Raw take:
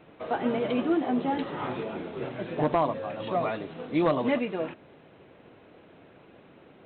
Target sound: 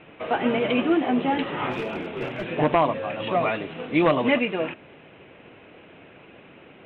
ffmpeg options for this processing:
-filter_complex "[0:a]lowpass=f=2.7k:t=q:w=2.6,asplit=3[a][b][c];[a]afade=t=out:st=1.7:d=0.02[d];[b]aeval=exprs='clip(val(0),-1,0.0355)':c=same,afade=t=in:st=1.7:d=0.02,afade=t=out:st=2.44:d=0.02[e];[c]afade=t=in:st=2.44:d=0.02[f];[d][e][f]amix=inputs=3:normalize=0,volume=4dB"

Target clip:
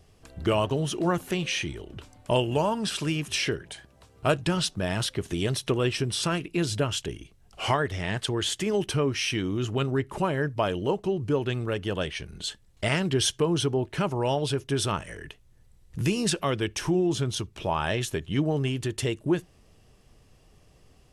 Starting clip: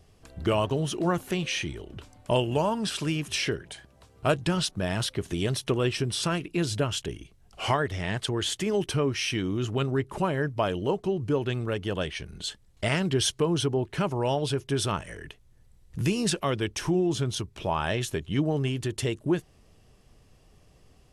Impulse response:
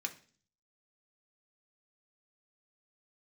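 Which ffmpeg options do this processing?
-filter_complex "[0:a]asplit=2[a][b];[1:a]atrim=start_sample=2205,atrim=end_sample=4410,asetrate=48510,aresample=44100[c];[b][c]afir=irnorm=-1:irlink=0,volume=-16dB[d];[a][d]amix=inputs=2:normalize=0"

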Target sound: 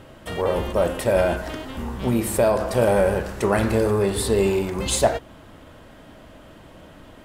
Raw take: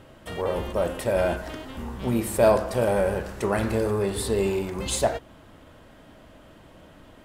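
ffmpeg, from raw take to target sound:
-filter_complex "[0:a]asettb=1/sr,asplit=3[a][b][c];[a]atrim=end=1.204[d];[b]atrim=start=1.2:end=2.6,asetpts=PTS-STARTPTS,afade=t=in:d=0.004:c=qsin,afade=t=out:st=1.396:d=0.004:c=qsin,acompressor=threshold=-20dB:ratio=4[e];[c]atrim=start=2.596[f];[d][e]acrossfade=d=0.004:c1=hsin:c2=qsin[g];[g][f]acrossfade=d=0.004:c1=qsin:c2=hsin,volume=4.5dB"

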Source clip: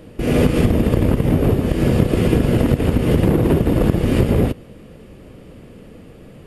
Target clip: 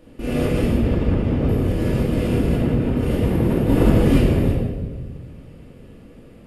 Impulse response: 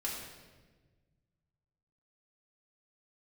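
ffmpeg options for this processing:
-filter_complex "[0:a]asettb=1/sr,asplit=3[a][b][c];[a]atrim=end=0.774[d];[b]atrim=start=0.77:end=1.49,asetpts=PTS-STARTPTS,afade=t=in:d=0.004:c=qsin,afade=t=out:st=0.716:d=0.004:c=qsin,lowpass=5.2k[e];[c]atrim=start=1.486[f];[d][e]acrossfade=d=0.004:c1=hsin:c2=qsin[g];[g][f]acrossfade=d=0.004:c1=qsin:c2=hsin,asplit=3[h][i][j];[h]afade=t=out:st=2.55:d=0.02[k];[i]highshelf=f=4.1k:g=-12,afade=t=in:st=2.55:d=0.02,afade=t=out:st=2.96:d=0.02[l];[j]afade=t=in:st=2.96:d=0.02[m];[k][l][m]amix=inputs=3:normalize=0,asplit=3[n][o][p];[n]afade=t=out:st=3.68:d=0.02[q];[o]acontrast=84,afade=t=in:st=3.68:d=0.02,afade=t=out:st=4.17:d=0.02[r];[p]afade=t=in:st=4.17:d=0.02[s];[q][r][s]amix=inputs=3:normalize=0[t];[1:a]atrim=start_sample=2205[u];[t][u]afir=irnorm=-1:irlink=0,volume=-7dB"

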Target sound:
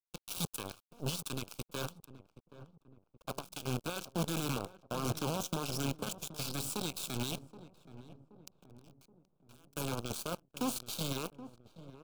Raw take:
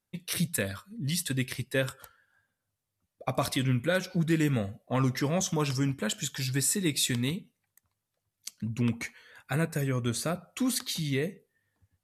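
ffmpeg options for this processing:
-filter_complex "[0:a]asettb=1/sr,asplit=3[a][b][c];[a]atrim=end=5.054[d];[b]atrim=start=5.05:end=5.52,asetpts=PTS-STARTPTS,afade=t=in:d=0.004:c=qsin,afade=t=out:st=0.466:d=0.004:c=qsin,lowshelf=f=180:g=8.5[e];[c]atrim=start=5.516[f];[d][e]acrossfade=d=0.004:c1=hsin:c2=qsin[g];[g][f]acrossfade=d=0.004:c1=qsin:c2=hsin,acrossover=split=320|2200[h][i][j];[h]asoftclip=type=hard:threshold=-27dB[k];[k][i][j]amix=inputs=3:normalize=0,asettb=1/sr,asplit=3[l][m][n];[l]atrim=end=3.334[o];[m]atrim=start=3.33:end=3.85,asetpts=PTS-STARTPTS,afade=t=in:d=0.004:c=qsin,afade=t=out:st=0.516:d=0.004:c=qsin,acrossover=split=120[p][q];[q]acompressor=threshold=-35dB:ratio=8[r];[p][r]amix=inputs=2:normalize=0[s];[n]atrim=start=3.846[t];[o][s]acrossfade=d=0.004:c1=hsin:c2=qsin[u];[u][t]acrossfade=d=0.004:c1=qsin:c2=hsin,alimiter=level_in=1.5dB:limit=-24dB:level=0:latency=1:release=18,volume=-1.5dB,asettb=1/sr,asplit=3[v][w][x];[v]atrim=end=8.554[y];[w]atrim=start=8.55:end=9.77,asetpts=PTS-STARTPTS,afade=t=in:d=0.004:c=qsin,afade=t=out:st=1.216:d=0.004:c=qsin,acompressor=threshold=-42dB:ratio=12[z];[x]atrim=start=9.766[aa];[y][z]acrossfade=d=0.004:c1=hsin:c2=qsin[ab];[ab][aa]acrossfade=d=0.004:c1=qsin:c2=hsin,aeval=exprs='0.0562*(cos(1*acos(clip(val(0)/0.0562,-1,1)))-cos(1*PI/2))+0.0224*(cos(3*acos(clip(val(0)/0.0562,-1,1)))-cos(3*PI/2))+0.000891*(cos(5*acos(clip(val(0)/0.0562,-1,1)))-cos(5*PI/2))+0.00126*(cos(6*acos(clip(val(0)/0.0562,-1,1)))-cos(6*PI/2))+0.000316*(cos(8*acos(clip(val(0)/0.0562,-1,1)))-cos(8*PI/2))':c=same,lowshelf=f=84:g=-4.5,asoftclip=type=tanh:threshold=-30.5dB,acrusher=bits=7:dc=4:mix=0:aa=0.000001,asuperstop=centerf=1900:order=4:qfactor=2.1,asplit=2[ac][ad];[ad]adelay=775,lowpass=f=880:p=1,volume=-13.5dB,asplit=2[ae][af];[af]adelay=775,lowpass=f=880:p=1,volume=0.53,asplit=2[ag][ah];[ah]adelay=775,lowpass=f=880:p=1,volume=0.53,asplit=2[ai][aj];[aj]adelay=775,lowpass=f=880:p=1,volume=0.53,asplit=2[ak][al];[al]adelay=775,lowpass=f=880:p=1,volume=0.53[am];[ac][ae][ag][ai][ak][am]amix=inputs=6:normalize=0,volume=4dB"

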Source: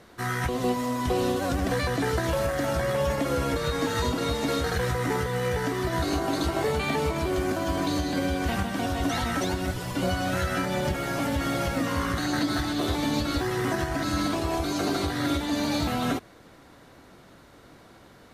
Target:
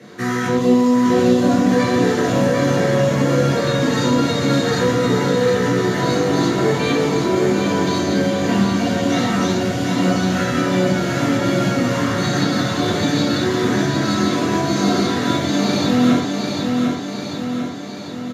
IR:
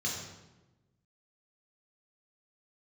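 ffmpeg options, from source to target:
-filter_complex "[0:a]highpass=f=150:w=0.5412,highpass=f=150:w=1.3066,highshelf=f=7.1k:g=-5,asplit=2[a][b];[b]aecho=0:1:746|1492|2238|2984|3730|4476:0.562|0.276|0.135|0.0662|0.0324|0.0159[c];[a][c]amix=inputs=2:normalize=0[d];[1:a]atrim=start_sample=2205,atrim=end_sample=6174[e];[d][e]afir=irnorm=-1:irlink=0,asplit=2[f][g];[g]acompressor=threshold=-32dB:ratio=6,volume=0.5dB[h];[f][h]amix=inputs=2:normalize=0,lowshelf=f=320:g=4.5"

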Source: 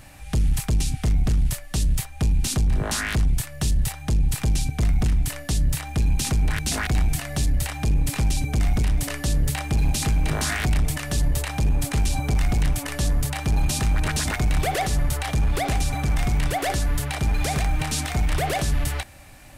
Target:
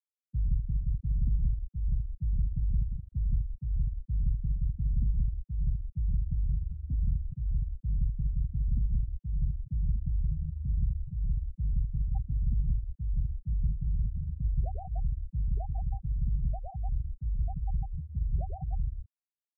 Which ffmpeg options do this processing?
-filter_complex "[0:a]asplit=2[a][b];[b]aecho=0:1:134.1|172:0.282|0.631[c];[a][c]amix=inputs=2:normalize=0,agate=range=-33dB:threshold=-21dB:ratio=3:detection=peak,afftfilt=real='re*gte(hypot(re,im),0.398)':imag='im*gte(hypot(re,im),0.398)':win_size=1024:overlap=0.75,acrossover=split=170[d][e];[e]acompressor=threshold=-38dB:ratio=2.5[f];[d][f]amix=inputs=2:normalize=0,volume=-9dB"

